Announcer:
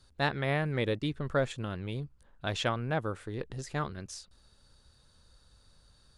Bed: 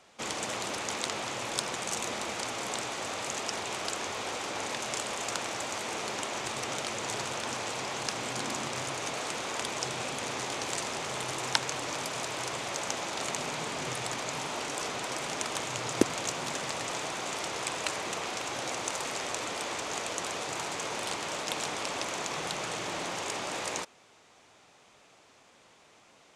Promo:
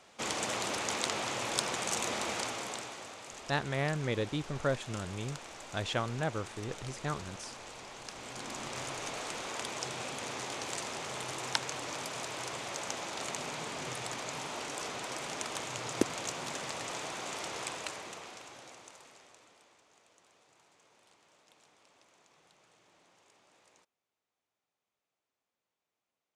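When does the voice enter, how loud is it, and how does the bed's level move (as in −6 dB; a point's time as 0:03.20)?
3.30 s, −2.5 dB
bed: 0:02.37 0 dB
0:03.19 −12.5 dB
0:08.02 −12.5 dB
0:08.80 −4.5 dB
0:17.63 −4.5 dB
0:19.86 −31 dB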